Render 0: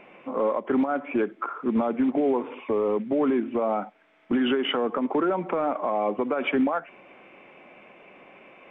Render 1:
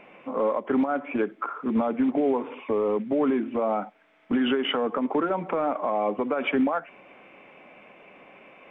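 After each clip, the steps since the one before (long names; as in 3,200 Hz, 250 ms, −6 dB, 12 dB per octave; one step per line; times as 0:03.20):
notch filter 360 Hz, Q 12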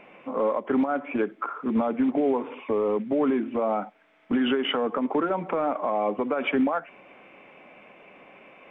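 no processing that can be heard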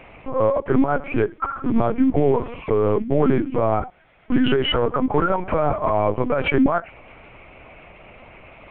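linear-prediction vocoder at 8 kHz pitch kept
level +6 dB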